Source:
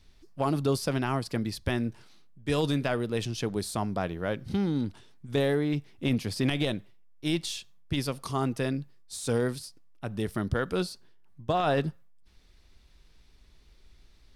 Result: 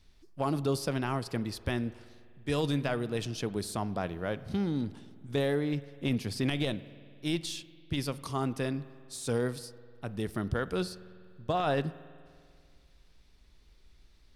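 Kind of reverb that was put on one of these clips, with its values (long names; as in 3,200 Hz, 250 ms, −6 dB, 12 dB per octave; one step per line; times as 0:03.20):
spring reverb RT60 2.2 s, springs 49 ms, chirp 75 ms, DRR 16.5 dB
level −3 dB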